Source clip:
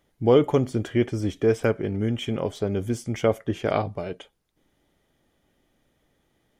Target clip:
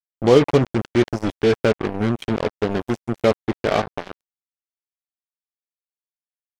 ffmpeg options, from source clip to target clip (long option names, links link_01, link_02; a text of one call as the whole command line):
ffmpeg -i in.wav -filter_complex "[0:a]asplit=2[link_01][link_02];[link_02]adelay=14,volume=-10dB[link_03];[link_01][link_03]amix=inputs=2:normalize=0,acrusher=bits=3:mix=0:aa=0.5,acrossover=split=6600[link_04][link_05];[link_05]acompressor=threshold=-53dB:ratio=4:attack=1:release=60[link_06];[link_04][link_06]amix=inputs=2:normalize=0,volume=3.5dB" out.wav